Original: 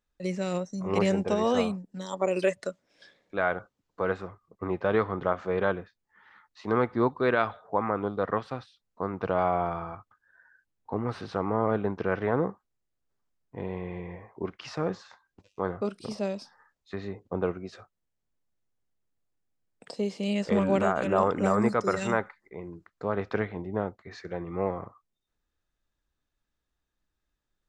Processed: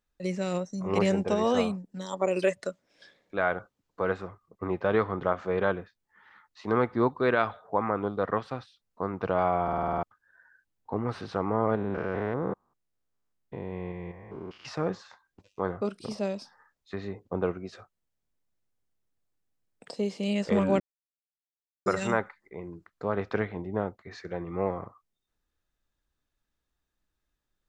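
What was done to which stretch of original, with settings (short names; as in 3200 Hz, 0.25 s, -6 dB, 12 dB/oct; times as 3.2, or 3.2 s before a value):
9.63 stutter in place 0.05 s, 8 plays
11.75–14.65 stepped spectrum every 0.2 s
20.8–21.86 mute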